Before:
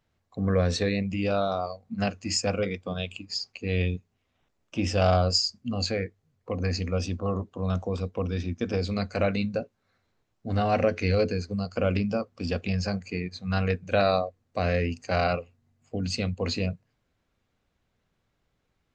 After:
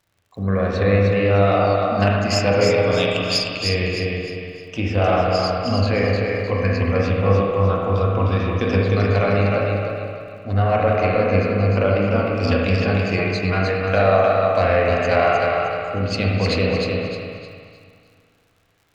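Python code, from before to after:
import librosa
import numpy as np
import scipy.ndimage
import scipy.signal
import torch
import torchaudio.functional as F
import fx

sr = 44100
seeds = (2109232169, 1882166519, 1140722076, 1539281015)

p1 = fx.peak_eq(x, sr, hz=100.0, db=12.0, octaves=0.28)
p2 = fx.env_lowpass_down(p1, sr, base_hz=2200.0, full_db=-18.5)
p3 = fx.low_shelf(p2, sr, hz=420.0, db=-8.0)
p4 = fx.rider(p3, sr, range_db=3, speed_s=0.5)
p5 = fx.cheby_harmonics(p4, sr, harmonics=(6,), levels_db=(-30,), full_scale_db=-13.0)
p6 = fx.dmg_crackle(p5, sr, seeds[0], per_s=57.0, level_db=-54.0)
p7 = p6 + fx.echo_feedback(p6, sr, ms=307, feedback_pct=36, wet_db=-4, dry=0)
p8 = fx.rev_spring(p7, sr, rt60_s=1.9, pass_ms=(36, 60), chirp_ms=70, drr_db=-1.5)
y = p8 * librosa.db_to_amplitude(8.0)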